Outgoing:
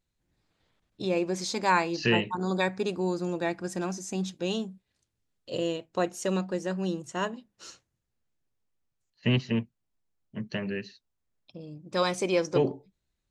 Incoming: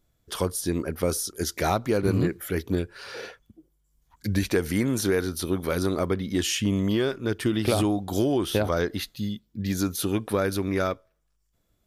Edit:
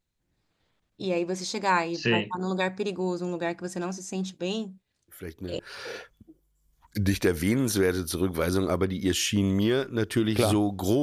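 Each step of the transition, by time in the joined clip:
outgoing
5.08 s: add incoming from 2.37 s 0.51 s -11 dB
5.59 s: go over to incoming from 2.88 s

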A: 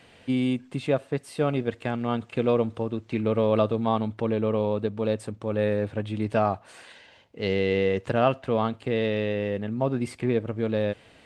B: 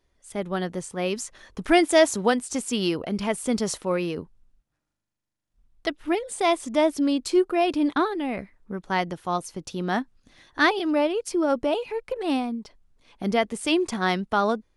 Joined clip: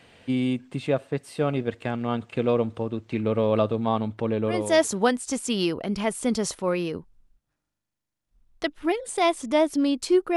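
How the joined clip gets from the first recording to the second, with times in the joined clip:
A
4.66 s: go over to B from 1.89 s, crossfade 0.44 s linear

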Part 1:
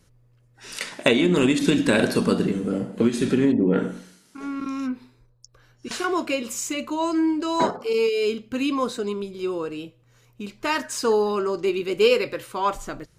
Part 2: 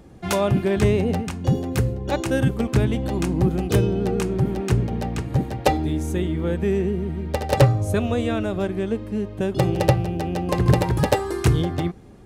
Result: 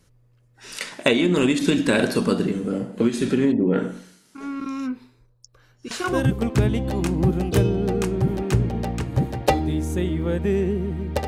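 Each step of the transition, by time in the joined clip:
part 1
6.14 s: go over to part 2 from 2.32 s, crossfade 0.30 s equal-power

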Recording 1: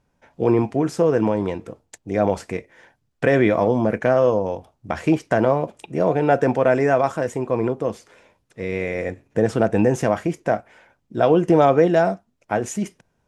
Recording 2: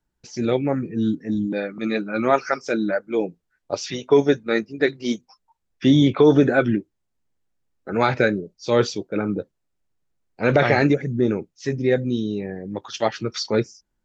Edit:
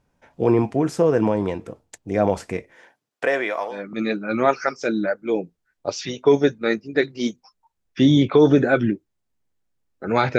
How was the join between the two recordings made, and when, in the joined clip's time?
recording 1
2.75–3.85 s: high-pass 200 Hz -> 1.4 kHz
3.77 s: go over to recording 2 from 1.62 s, crossfade 0.16 s

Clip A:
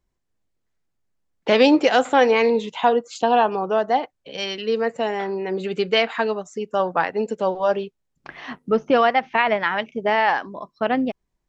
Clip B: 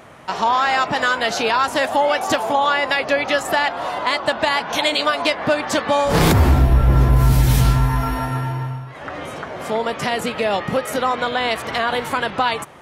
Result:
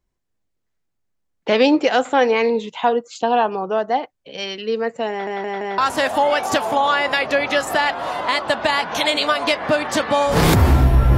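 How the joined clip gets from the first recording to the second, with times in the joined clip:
clip A
5.10 s: stutter in place 0.17 s, 4 plays
5.78 s: go over to clip B from 1.56 s

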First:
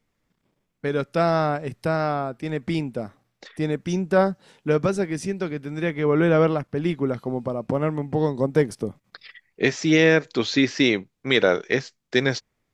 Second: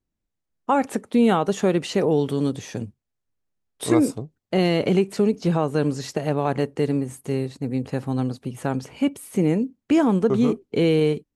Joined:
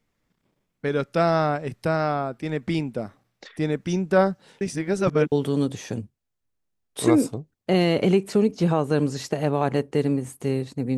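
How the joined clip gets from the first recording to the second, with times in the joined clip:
first
4.61–5.32 s: reverse
5.32 s: go over to second from 2.16 s

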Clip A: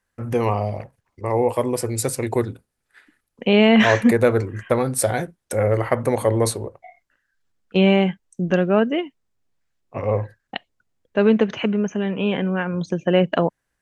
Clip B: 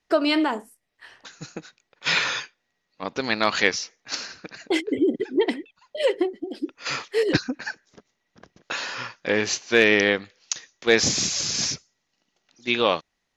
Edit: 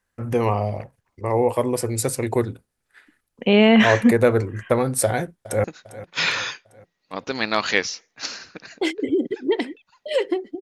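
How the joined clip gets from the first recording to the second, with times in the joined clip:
clip A
5.05–5.64 s: echo throw 400 ms, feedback 50%, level -16 dB
5.64 s: go over to clip B from 1.53 s

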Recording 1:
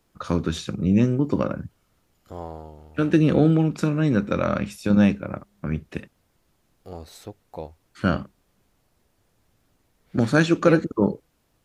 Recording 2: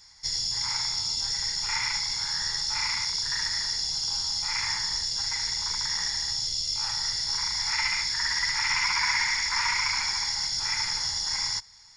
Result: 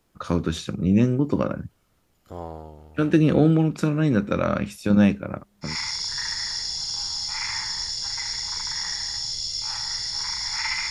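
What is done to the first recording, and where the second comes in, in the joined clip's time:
recording 1
5.69 s: go over to recording 2 from 2.83 s, crossfade 0.16 s

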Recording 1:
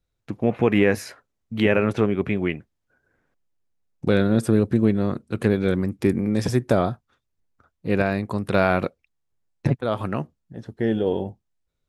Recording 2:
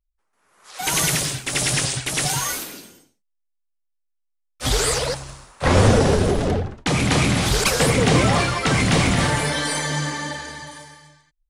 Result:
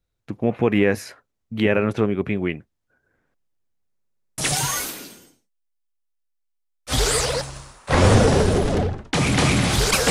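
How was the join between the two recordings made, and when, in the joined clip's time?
recording 1
3.90 s: stutter in place 0.06 s, 8 plays
4.38 s: go over to recording 2 from 2.11 s

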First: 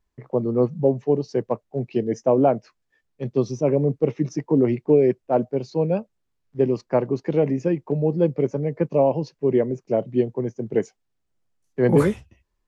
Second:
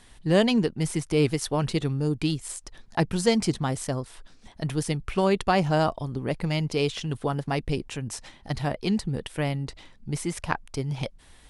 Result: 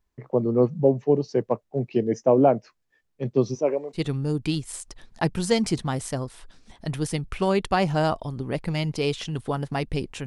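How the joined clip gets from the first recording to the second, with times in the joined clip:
first
3.54–4.01 s: high-pass 250 Hz -> 1.5 kHz
3.97 s: go over to second from 1.73 s, crossfade 0.08 s

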